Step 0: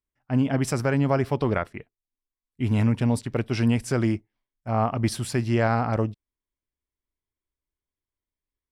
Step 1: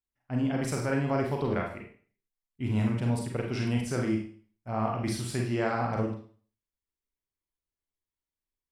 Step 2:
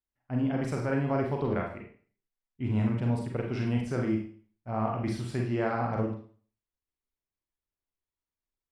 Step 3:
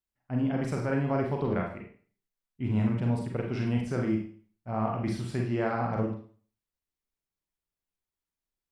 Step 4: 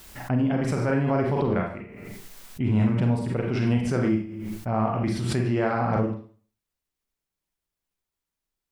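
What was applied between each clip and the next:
Schroeder reverb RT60 0.45 s, combs from 33 ms, DRR 0 dB; trim -7.5 dB
low-pass 2.1 kHz 6 dB/octave
peaking EQ 180 Hz +6 dB 0.24 oct
swell ahead of each attack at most 28 dB/s; trim +4 dB

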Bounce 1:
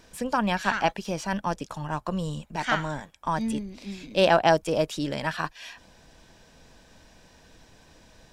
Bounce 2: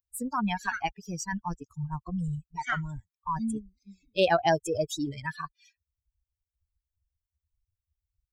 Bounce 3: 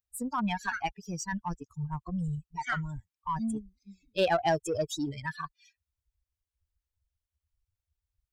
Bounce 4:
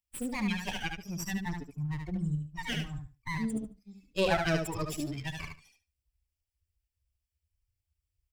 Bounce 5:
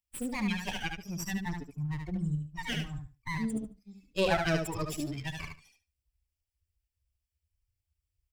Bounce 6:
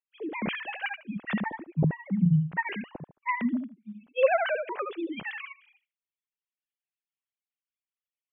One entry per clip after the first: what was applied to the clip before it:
expander on every frequency bin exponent 3; in parallel at -3 dB: compressor with a negative ratio -39 dBFS, ratio -1
treble shelf 11 kHz -4.5 dB; in parallel at -3 dB: saturation -26.5 dBFS, distortion -8 dB; on the sum: trim -5 dB
comb filter that takes the minimum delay 0.39 ms; LFO notch saw up 2.8 Hz 360–1600 Hz; on a send: feedback delay 73 ms, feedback 18%, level -5 dB
no audible change
formants replaced by sine waves; trim +4.5 dB

